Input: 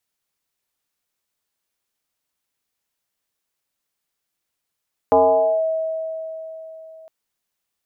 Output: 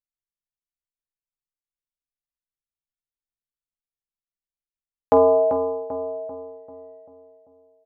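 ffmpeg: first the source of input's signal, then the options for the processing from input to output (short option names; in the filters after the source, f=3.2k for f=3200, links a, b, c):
-f lavfi -i "aevalsrc='0.335*pow(10,-3*t/3.79)*sin(2*PI*643*t+1.5*clip(1-t/0.51,0,1)*sin(2*PI*0.29*643*t))':d=1.96:s=44100"
-filter_complex "[0:a]asplit=2[a][b];[b]aecho=0:1:15|50:0.398|0.224[c];[a][c]amix=inputs=2:normalize=0,anlmdn=1,asplit=2[d][e];[e]adelay=391,lowpass=f=1.2k:p=1,volume=-6.5dB,asplit=2[f][g];[g]adelay=391,lowpass=f=1.2k:p=1,volume=0.51,asplit=2[h][i];[i]adelay=391,lowpass=f=1.2k:p=1,volume=0.51,asplit=2[j][k];[k]adelay=391,lowpass=f=1.2k:p=1,volume=0.51,asplit=2[l][m];[m]adelay=391,lowpass=f=1.2k:p=1,volume=0.51,asplit=2[n][o];[o]adelay=391,lowpass=f=1.2k:p=1,volume=0.51[p];[f][h][j][l][n][p]amix=inputs=6:normalize=0[q];[d][q]amix=inputs=2:normalize=0"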